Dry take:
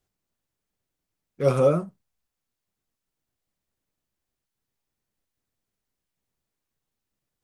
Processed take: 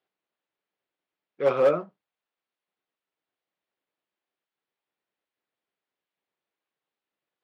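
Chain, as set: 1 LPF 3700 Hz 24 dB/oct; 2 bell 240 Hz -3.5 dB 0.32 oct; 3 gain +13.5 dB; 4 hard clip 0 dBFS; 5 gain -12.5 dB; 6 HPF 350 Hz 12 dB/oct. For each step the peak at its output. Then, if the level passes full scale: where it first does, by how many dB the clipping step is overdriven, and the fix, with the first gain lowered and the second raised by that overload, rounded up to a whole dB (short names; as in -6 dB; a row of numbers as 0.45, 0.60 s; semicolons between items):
-9.0, -9.0, +4.5, 0.0, -12.5, -10.0 dBFS; step 3, 4.5 dB; step 3 +8.5 dB, step 5 -7.5 dB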